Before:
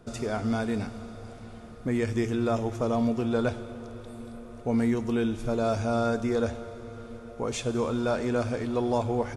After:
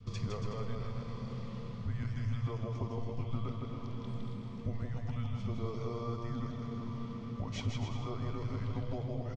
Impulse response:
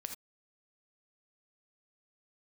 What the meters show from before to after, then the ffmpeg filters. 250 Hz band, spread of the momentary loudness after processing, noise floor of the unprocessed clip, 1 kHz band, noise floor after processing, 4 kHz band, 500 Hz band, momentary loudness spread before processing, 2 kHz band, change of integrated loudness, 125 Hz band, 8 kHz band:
-13.0 dB, 5 LU, -45 dBFS, -12.5 dB, -43 dBFS, -7.5 dB, -15.5 dB, 16 LU, -14.0 dB, -10.5 dB, -1.5 dB, under -10 dB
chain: -af "lowpass=f=5700:w=0.5412,lowpass=f=5700:w=1.3066,adynamicequalizer=threshold=0.00708:dfrequency=990:dqfactor=1.2:tfrequency=990:tqfactor=1.2:attack=5:release=100:ratio=0.375:range=3:mode=boostabove:tftype=bell,acompressor=threshold=0.0141:ratio=6,afreqshift=-230,equalizer=f=100:t=o:w=0.33:g=12,equalizer=f=315:t=o:w=0.33:g=-9,equalizer=f=800:t=o:w=0.33:g=-8,equalizer=f=1600:t=o:w=0.33:g=-6,aecho=1:1:160|280|370|437.5|488.1:0.631|0.398|0.251|0.158|0.1"

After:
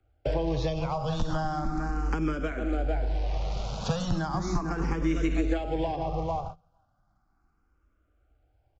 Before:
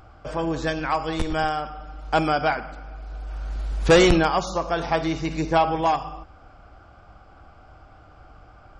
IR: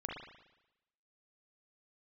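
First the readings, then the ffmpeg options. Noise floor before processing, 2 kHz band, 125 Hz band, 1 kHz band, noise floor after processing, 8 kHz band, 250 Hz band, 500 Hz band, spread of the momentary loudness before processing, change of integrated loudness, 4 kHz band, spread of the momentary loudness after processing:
-50 dBFS, -12.0 dB, -0.5 dB, -9.5 dB, -71 dBFS, -9.0 dB, -4.5 dB, -9.0 dB, 20 LU, -7.5 dB, -11.0 dB, 4 LU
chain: -filter_complex "[0:a]bass=f=250:g=-3,treble=f=4000:g=1,acrossover=split=230|670|1500[s0][s1][s2][s3];[s1]alimiter=limit=0.119:level=0:latency=1:release=294[s4];[s0][s4][s2][s3]amix=inputs=4:normalize=0,asplit=2[s5][s6];[s6]adelay=447,lowpass=f=1300:p=1,volume=0.299,asplit=2[s7][s8];[s8]adelay=447,lowpass=f=1300:p=1,volume=0.16[s9];[s5][s7][s9]amix=inputs=3:normalize=0,agate=range=0.0316:threshold=0.0112:ratio=16:detection=peak,bandreject=f=170.5:t=h:w=4,bandreject=f=341:t=h:w=4,acrusher=bits=4:mode=log:mix=0:aa=0.000001,acompressor=threshold=0.0631:ratio=3,aresample=16000,aresample=44100,acrossover=split=120|610[s10][s11][s12];[s10]acompressor=threshold=0.00794:ratio=4[s13];[s11]acompressor=threshold=0.0112:ratio=4[s14];[s12]acompressor=threshold=0.00794:ratio=4[s15];[s13][s14][s15]amix=inputs=3:normalize=0,lowshelf=f=310:g=11,asplit=2[s16][s17];[s17]afreqshift=0.36[s18];[s16][s18]amix=inputs=2:normalize=1,volume=2.11"

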